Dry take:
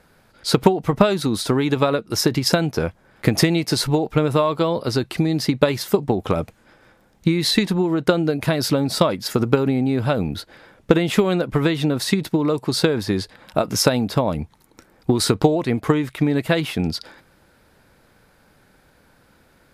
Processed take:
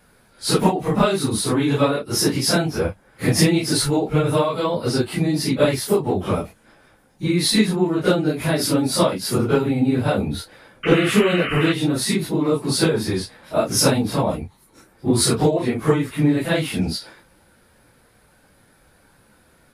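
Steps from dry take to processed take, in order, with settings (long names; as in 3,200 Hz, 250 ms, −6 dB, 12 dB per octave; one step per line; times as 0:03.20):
random phases in long frames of 100 ms
sound drawn into the spectrogram noise, 0:10.83–0:11.73, 1,100–3,100 Hz −27 dBFS
parametric band 9,800 Hz +10 dB 0.31 octaves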